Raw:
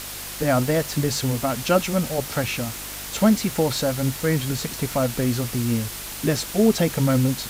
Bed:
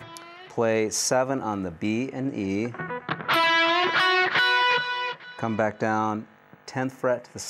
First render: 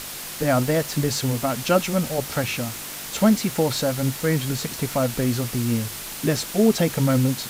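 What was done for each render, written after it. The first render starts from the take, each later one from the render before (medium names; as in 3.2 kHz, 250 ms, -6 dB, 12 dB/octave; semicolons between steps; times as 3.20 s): de-hum 50 Hz, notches 2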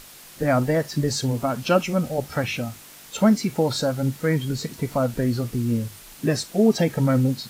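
noise print and reduce 11 dB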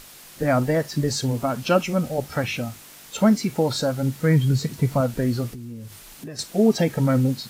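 4.17–5.01 s: peaking EQ 130 Hz +9 dB; 5.53–6.39 s: compression 4:1, threshold -35 dBFS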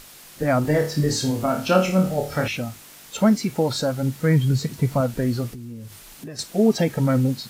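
0.62–2.48 s: flutter echo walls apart 4.6 m, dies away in 0.36 s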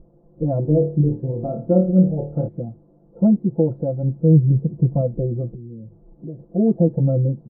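inverse Chebyshev low-pass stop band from 2.4 kHz, stop band 70 dB; comb 5.9 ms, depth 100%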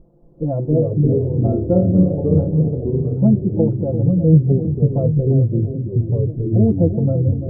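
on a send: feedback echo behind a low-pass 342 ms, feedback 33%, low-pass 770 Hz, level -9 dB; on the sum: ever faster or slower copies 224 ms, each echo -3 st, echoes 3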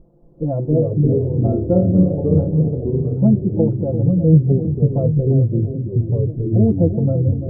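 no audible change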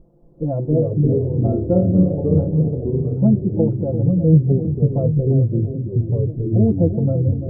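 trim -1 dB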